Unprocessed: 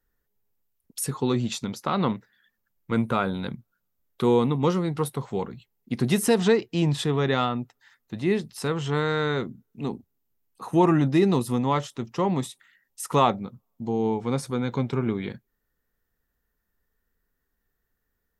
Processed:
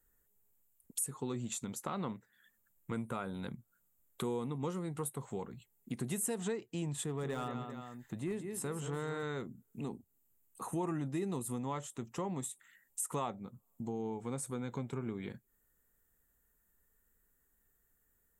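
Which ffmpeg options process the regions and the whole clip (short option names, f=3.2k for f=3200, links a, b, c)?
-filter_complex "[0:a]asettb=1/sr,asplit=3[a][b][c];[a]atrim=end=7.034[d];[b]atrim=start=7.03:end=9.23,asetpts=PTS-STARTPTS,afade=t=in:d=0.004:c=qsin,afade=t=out:st=2.196:d=0.004:c=qsin,equalizer=f=4.2k:w=0.4:g=-3.5,aecho=1:1:179|393:0.355|0.133,atrim=end_sample=97020,asoftclip=type=hard:threshold=-16dB[e];[c]atrim=start=9.226[f];[d][e]acrossfade=d=0.004:c1=hsin:c2=qsin[g];[g][f]acrossfade=d=0.004:c1=qsin:c2=hsin,highshelf=f=6.3k:t=q:w=3:g=7.5,acompressor=threshold=-41dB:ratio=2.5,volume=-1dB"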